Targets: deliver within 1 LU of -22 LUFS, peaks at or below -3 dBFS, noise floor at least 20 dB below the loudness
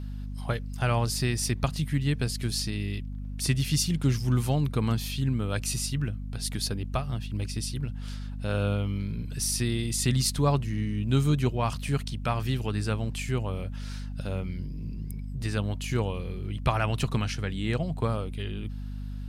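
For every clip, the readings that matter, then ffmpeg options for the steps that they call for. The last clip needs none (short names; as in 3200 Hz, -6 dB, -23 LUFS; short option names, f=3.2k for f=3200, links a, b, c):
hum 50 Hz; harmonics up to 250 Hz; hum level -33 dBFS; loudness -29.5 LUFS; peak -9.5 dBFS; loudness target -22.0 LUFS
-> -af "bandreject=f=50:t=h:w=6,bandreject=f=100:t=h:w=6,bandreject=f=150:t=h:w=6,bandreject=f=200:t=h:w=6,bandreject=f=250:t=h:w=6"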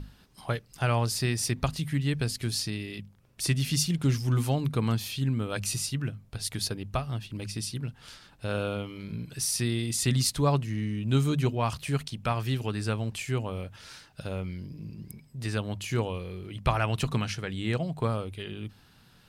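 hum none; loudness -30.0 LUFS; peak -10.0 dBFS; loudness target -22.0 LUFS
-> -af "volume=8dB,alimiter=limit=-3dB:level=0:latency=1"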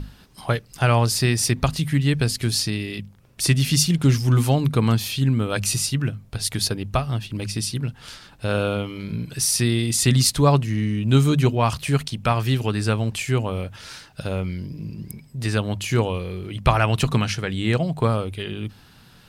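loudness -22.0 LUFS; peak -3.0 dBFS; noise floor -50 dBFS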